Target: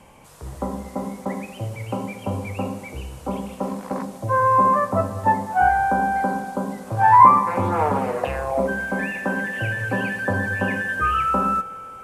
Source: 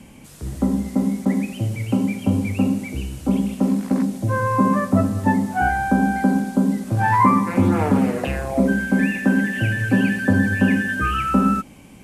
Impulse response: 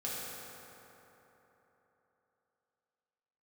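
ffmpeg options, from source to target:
-filter_complex "[0:a]equalizer=f=250:t=o:w=1:g=-9,equalizer=f=500:t=o:w=1:g=6,equalizer=f=1k:t=o:w=1:g=11,asplit=2[a][b];[1:a]atrim=start_sample=2205,adelay=32[c];[b][c]afir=irnorm=-1:irlink=0,volume=-23dB[d];[a][d]amix=inputs=2:normalize=0,volume=-5dB"

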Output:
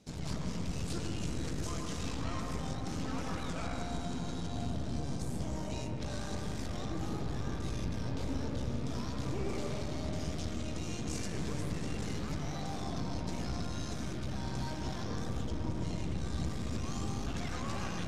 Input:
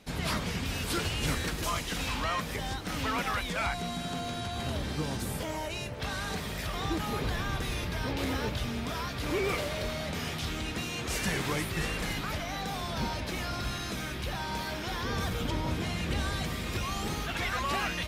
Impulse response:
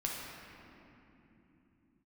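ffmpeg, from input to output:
-filter_complex "[0:a]highpass=53,equalizer=f=2k:w=0.36:g=-12.5,acompressor=threshold=-35dB:ratio=6,aeval=exprs='(tanh(63.1*val(0)+0.75)-tanh(0.75))/63.1':c=same,lowpass=f=6.7k:t=q:w=1.6,asplit=2[a][b];[1:a]atrim=start_sample=2205,lowpass=2.1k,adelay=115[c];[b][c]afir=irnorm=-1:irlink=0,volume=-3dB[d];[a][d]amix=inputs=2:normalize=0,volume=2.5dB"

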